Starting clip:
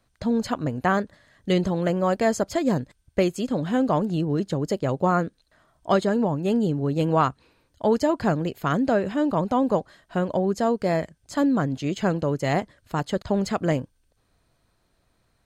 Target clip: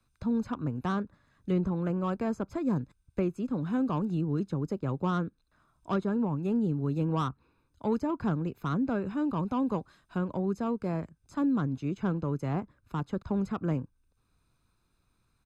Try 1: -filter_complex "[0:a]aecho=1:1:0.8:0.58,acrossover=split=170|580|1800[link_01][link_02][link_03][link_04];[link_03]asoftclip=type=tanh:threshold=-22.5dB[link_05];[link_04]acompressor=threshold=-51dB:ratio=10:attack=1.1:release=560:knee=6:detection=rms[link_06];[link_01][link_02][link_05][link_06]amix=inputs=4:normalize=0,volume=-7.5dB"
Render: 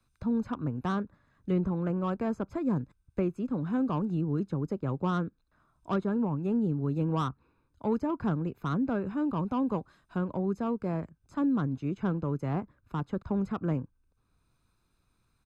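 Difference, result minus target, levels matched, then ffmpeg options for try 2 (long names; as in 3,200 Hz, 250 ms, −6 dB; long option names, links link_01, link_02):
downward compressor: peak gain reduction +6.5 dB
-filter_complex "[0:a]aecho=1:1:0.8:0.58,acrossover=split=170|580|1800[link_01][link_02][link_03][link_04];[link_03]asoftclip=type=tanh:threshold=-22.5dB[link_05];[link_04]acompressor=threshold=-44dB:ratio=10:attack=1.1:release=560:knee=6:detection=rms[link_06];[link_01][link_02][link_05][link_06]amix=inputs=4:normalize=0,volume=-7.5dB"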